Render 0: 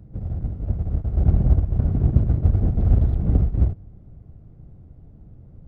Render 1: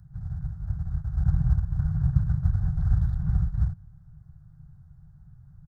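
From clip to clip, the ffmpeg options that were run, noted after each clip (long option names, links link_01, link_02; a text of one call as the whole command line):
ffmpeg -i in.wav -af "firequalizer=gain_entry='entry(100,0);entry(160,6);entry(230,-25);entry(360,-21);entry(530,-22);entry(760,-3);entry(1600,10);entry(2400,-15);entry(3900,4);entry(5800,8)':delay=0.05:min_phase=1,volume=-6dB" out.wav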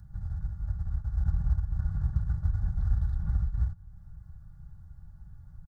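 ffmpeg -i in.wav -af "aecho=1:1:3.5:0.63,acompressor=threshold=-39dB:ratio=1.5,volume=2.5dB" out.wav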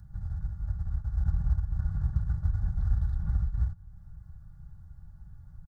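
ffmpeg -i in.wav -af anull out.wav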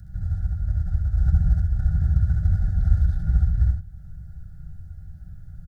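ffmpeg -i in.wav -af "asuperstop=centerf=1000:order=12:qfactor=2.1,aecho=1:1:66|78:0.596|0.473,volume=6.5dB" out.wav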